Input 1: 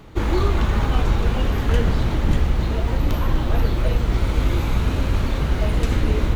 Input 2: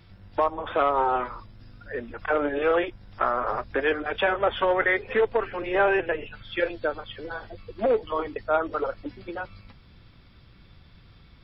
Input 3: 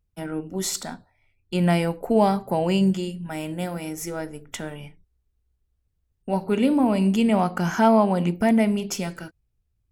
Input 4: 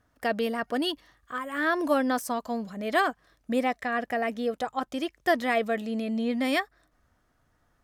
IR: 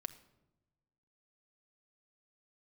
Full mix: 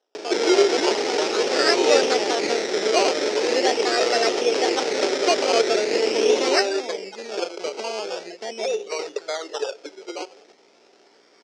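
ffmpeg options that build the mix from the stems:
-filter_complex "[0:a]tiltshelf=f=1.3k:g=8,acompressor=mode=upward:threshold=-21dB:ratio=2.5,adelay=150,volume=-0.5dB[a];[1:a]acompressor=threshold=-26dB:ratio=3,aeval=exprs='val(0)+0.00355*(sin(2*PI*60*n/s)+sin(2*PI*2*60*n/s)/2+sin(2*PI*3*60*n/s)/3+sin(2*PI*4*60*n/s)/4+sin(2*PI*5*60*n/s)/5)':c=same,adelay=800,volume=0.5dB,asplit=2[b][c];[c]volume=-3.5dB[d];[2:a]volume=-7.5dB,asplit=2[e][f];[f]volume=-11.5dB[g];[3:a]dynaudnorm=f=180:g=5:m=10dB,volume=-7.5dB,asplit=2[h][i];[i]volume=-4.5dB[j];[b][e]amix=inputs=2:normalize=0,acompressor=threshold=-37dB:ratio=1.5,volume=0dB[k];[4:a]atrim=start_sample=2205[l];[d][g][j]amix=inputs=3:normalize=0[m];[m][l]afir=irnorm=-1:irlink=0[n];[a][h][k][n]amix=inputs=4:normalize=0,equalizer=f=2.3k:t=o:w=0.77:g=5,acrusher=samples=19:mix=1:aa=0.000001:lfo=1:lforange=11.4:lforate=0.42,highpass=f=390:w=0.5412,highpass=f=390:w=1.3066,equalizer=f=410:t=q:w=4:g=9,equalizer=f=1.1k:t=q:w=4:g=-9,equalizer=f=1.6k:t=q:w=4:g=-4,equalizer=f=5.3k:t=q:w=4:g=9,lowpass=f=6.8k:w=0.5412,lowpass=f=6.8k:w=1.3066"

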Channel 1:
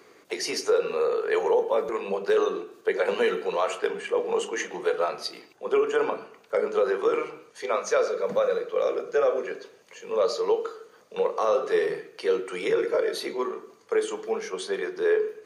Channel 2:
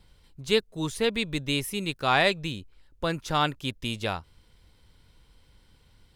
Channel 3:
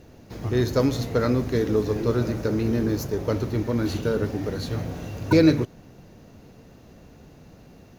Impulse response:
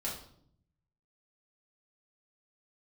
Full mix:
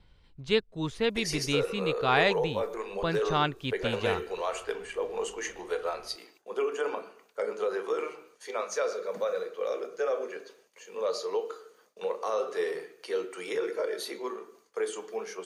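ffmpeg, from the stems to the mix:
-filter_complex "[0:a]agate=range=-33dB:threshold=-51dB:ratio=3:detection=peak,equalizer=f=120:w=1.7:g=-13,adelay=850,volume=-6.5dB[a];[1:a]lowpass=3.3k,volume=-2dB[b];[a][b]amix=inputs=2:normalize=0,highshelf=f=6.7k:g=8.5"

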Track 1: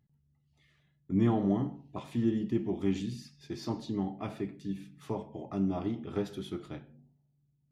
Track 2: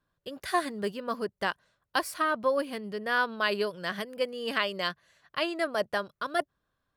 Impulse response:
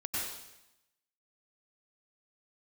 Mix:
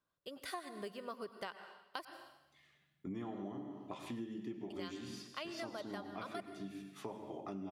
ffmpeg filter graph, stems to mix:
-filter_complex "[0:a]highpass=f=430:p=1,adelay=1950,volume=-1dB,asplit=2[a][b];[b]volume=-10dB[c];[1:a]lowshelf=f=150:g=-11.5,bandreject=f=1.7k:w=9.2,volume=-7.5dB,asplit=3[d][e][f];[d]atrim=end=2.05,asetpts=PTS-STARTPTS,afade=t=out:st=2.046:d=0.004:c=hsin[g];[e]atrim=start=2.05:end=4.7,asetpts=PTS-STARTPTS,volume=0[h];[f]atrim=start=4.7,asetpts=PTS-STARTPTS,afade=t=in:d=0.004:c=hsin[i];[g][h][i]concat=n=3:v=0:a=1,asplit=2[j][k];[k]volume=-14.5dB[l];[2:a]atrim=start_sample=2205[m];[c][l]amix=inputs=2:normalize=0[n];[n][m]afir=irnorm=-1:irlink=0[o];[a][j][o]amix=inputs=3:normalize=0,acompressor=threshold=-41dB:ratio=6"

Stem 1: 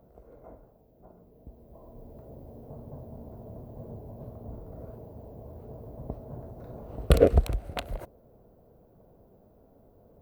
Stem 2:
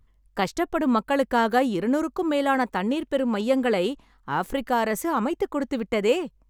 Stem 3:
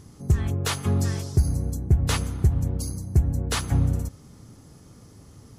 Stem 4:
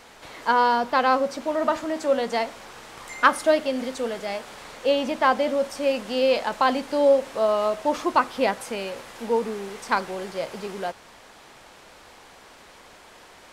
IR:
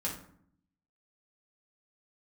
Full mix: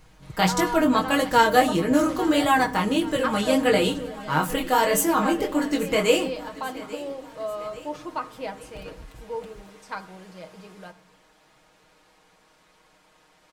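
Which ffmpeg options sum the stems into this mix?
-filter_complex "[0:a]asoftclip=type=tanh:threshold=-22dB,adelay=1650,volume=-16.5dB[a];[1:a]highshelf=f=3k:g=11,flanger=delay=19.5:depth=4.5:speed=1.6,volume=1dB,asplit=3[b][c][d];[c]volume=-11.5dB[e];[d]volume=-16.5dB[f];[2:a]acompressor=threshold=-26dB:ratio=6,volume=-15.5dB[g];[3:a]volume=-14.5dB,asplit=2[h][i];[i]volume=-11.5dB[j];[4:a]atrim=start_sample=2205[k];[e][j]amix=inputs=2:normalize=0[l];[l][k]afir=irnorm=-1:irlink=0[m];[f]aecho=0:1:838|1676|2514|3352|4190|5028|5866:1|0.51|0.26|0.133|0.0677|0.0345|0.0176[n];[a][b][g][h][m][n]amix=inputs=6:normalize=0,lowshelf=f=180:g=3,aecho=1:1:6.4:0.68"

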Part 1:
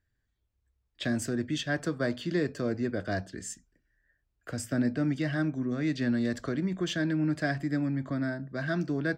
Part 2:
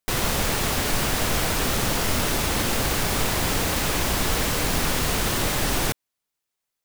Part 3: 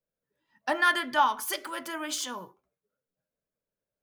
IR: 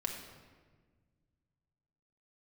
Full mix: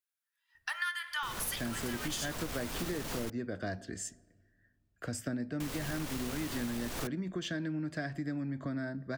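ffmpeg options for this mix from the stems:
-filter_complex "[0:a]adelay=550,volume=-1.5dB,asplit=2[a][b];[b]volume=-20.5dB[c];[1:a]asoftclip=type=tanh:threshold=-20.5dB,adelay=1150,volume=-8dB,asplit=3[d][e][f];[d]atrim=end=3.3,asetpts=PTS-STARTPTS,afade=t=out:st=3.296:d=0.004:c=hsin[g];[e]atrim=start=3.3:end=5.6,asetpts=PTS-STARTPTS,volume=0[h];[f]atrim=start=5.6,asetpts=PTS-STARTPTS,afade=t=in:d=0.004:c=hsin[i];[g][h][i]concat=n=3:v=0:a=1[j];[2:a]highpass=f=1.3k:w=0.5412,highpass=f=1.3k:w=1.3066,equalizer=f=11k:t=o:w=0.32:g=5,volume=-1.5dB,asplit=3[k][l][m];[l]volume=-9dB[n];[m]apad=whole_len=352582[o];[j][o]sidechaincompress=threshold=-29dB:ratio=8:attack=16:release=1210[p];[3:a]atrim=start_sample=2205[q];[c][n]amix=inputs=2:normalize=0[r];[r][q]afir=irnorm=-1:irlink=0[s];[a][p][k][s]amix=inputs=4:normalize=0,acompressor=threshold=-33dB:ratio=6"

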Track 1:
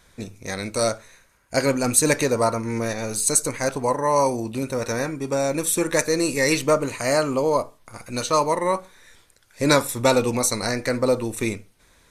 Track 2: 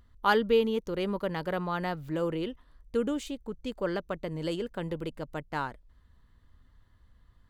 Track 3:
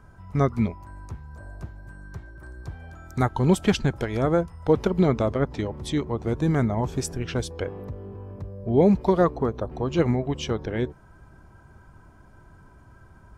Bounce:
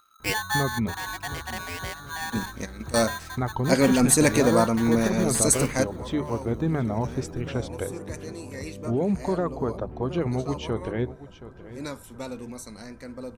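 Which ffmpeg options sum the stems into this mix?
-filter_complex "[0:a]equalizer=f=220:t=o:w=0.88:g=9,adelay=2150,volume=-2dB[a];[1:a]aeval=exprs='val(0)*sgn(sin(2*PI*1300*n/s))':c=same,volume=-3.5dB,asplit=3[b][c][d];[c]volume=-18.5dB[e];[2:a]lowpass=f=2.6k:p=1,bandreject=f=50:t=h:w=6,bandreject=f=100:t=h:w=6,bandreject=f=150:t=h:w=6,alimiter=limit=-16.5dB:level=0:latency=1,adelay=200,volume=-1dB,asplit=2[f][g];[g]volume=-15.5dB[h];[d]apad=whole_len=628797[i];[a][i]sidechaingate=range=-18dB:threshold=-53dB:ratio=16:detection=peak[j];[e][h]amix=inputs=2:normalize=0,aecho=0:1:724|1448|2172|2896|3620:1|0.38|0.144|0.0549|0.0209[k];[j][b][f][k]amix=inputs=4:normalize=0"

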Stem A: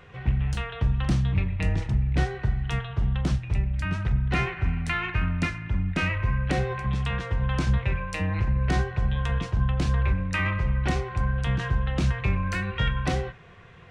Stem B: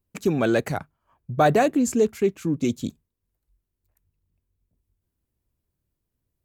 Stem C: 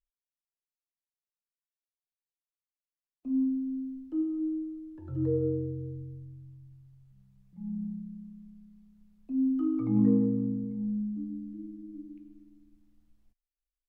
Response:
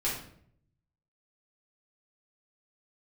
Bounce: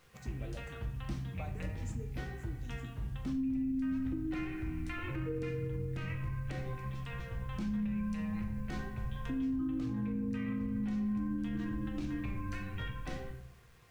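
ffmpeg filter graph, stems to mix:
-filter_complex "[0:a]volume=-19dB,asplit=2[a][b];[b]volume=-5.5dB[c];[1:a]acompressor=threshold=-28dB:ratio=6,asplit=2[d][e];[e]afreqshift=2.4[f];[d][f]amix=inputs=2:normalize=1,volume=-18.5dB,asplit=2[g][h];[h]volume=-9dB[i];[2:a]acrossover=split=150|330[j][k][l];[j]acompressor=threshold=-44dB:ratio=4[m];[k]acompressor=threshold=-43dB:ratio=4[n];[l]acompressor=threshold=-46dB:ratio=4[o];[m][n][o]amix=inputs=3:normalize=0,volume=0.5dB,asplit=2[p][q];[q]volume=-4.5dB[r];[3:a]atrim=start_sample=2205[s];[c][i][r]amix=inputs=3:normalize=0[t];[t][s]afir=irnorm=-1:irlink=0[u];[a][g][p][u]amix=inputs=4:normalize=0,acrusher=bits=10:mix=0:aa=0.000001,alimiter=level_in=4.5dB:limit=-24dB:level=0:latency=1:release=135,volume=-4.5dB"

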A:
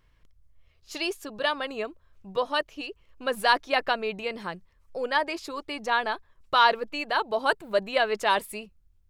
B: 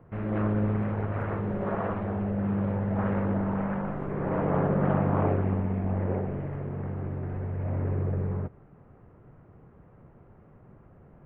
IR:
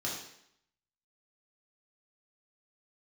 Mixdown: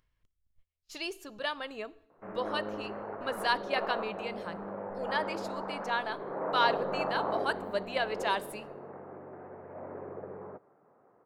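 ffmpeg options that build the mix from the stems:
-filter_complex "[0:a]agate=range=-35dB:threshold=-50dB:ratio=16:detection=peak,acompressor=mode=upward:threshold=-46dB:ratio=2.5,volume=-7.5dB,asplit=2[a][b];[b]volume=-20.5dB[c];[1:a]highpass=490,lowpass=1.3k,adelay=2100,volume=-1dB[d];[2:a]atrim=start_sample=2205[e];[c][e]afir=irnorm=-1:irlink=0[f];[a][d][f]amix=inputs=3:normalize=0"

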